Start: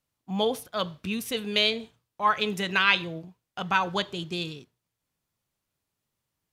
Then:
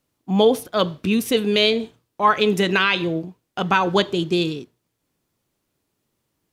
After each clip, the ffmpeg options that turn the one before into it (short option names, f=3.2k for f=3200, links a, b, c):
-af "equalizer=f=330:t=o:w=1.4:g=9,alimiter=limit=-12dB:level=0:latency=1:release=148,volume=6.5dB"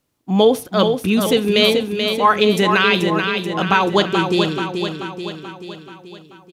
-af "aecho=1:1:433|866|1299|1732|2165|2598|3031:0.501|0.276|0.152|0.0834|0.0459|0.0252|0.0139,volume=2.5dB"